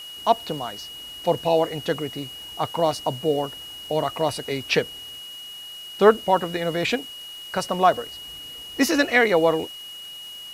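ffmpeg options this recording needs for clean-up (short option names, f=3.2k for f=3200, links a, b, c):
-af "adeclick=t=4,bandreject=f=2.9k:w=30,afwtdn=0.0045"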